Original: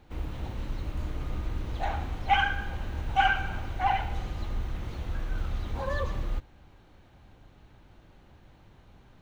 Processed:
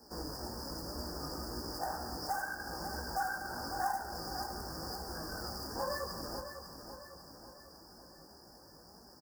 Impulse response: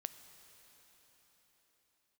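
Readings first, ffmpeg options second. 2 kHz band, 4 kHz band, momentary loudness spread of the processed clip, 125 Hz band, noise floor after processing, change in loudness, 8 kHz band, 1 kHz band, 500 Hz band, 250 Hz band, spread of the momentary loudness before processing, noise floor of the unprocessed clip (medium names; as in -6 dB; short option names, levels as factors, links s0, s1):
-10.5 dB, -3.0 dB, 19 LU, -14.0 dB, -57 dBFS, -8.0 dB, no reading, -8.0 dB, -2.0 dB, -3.0 dB, 12 LU, -57 dBFS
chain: -filter_complex "[0:a]flanger=delay=16.5:depth=2.2:speed=2,acrossover=split=250|2000[s0][s1][s2];[s1]adynamicsmooth=sensitivity=6.5:basefreq=1200[s3];[s2]aexciter=amount=9.3:drive=3.6:freq=3000[s4];[s0][s3][s4]amix=inputs=3:normalize=0,aresample=11025,aresample=44100,aemphasis=mode=production:type=bsi,acrusher=bits=3:mode=log:mix=0:aa=0.000001,acompressor=threshold=0.0112:ratio=6,asuperstop=centerf=3000:order=20:qfactor=0.97,flanger=delay=4.2:depth=4.8:regen=65:speed=1:shape=triangular,highpass=52,equalizer=f=120:t=o:w=0.33:g=-14,aecho=1:1:550|1100|1650|2200|2750|3300:0.355|0.181|0.0923|0.0471|0.024|0.0122,volume=4.22"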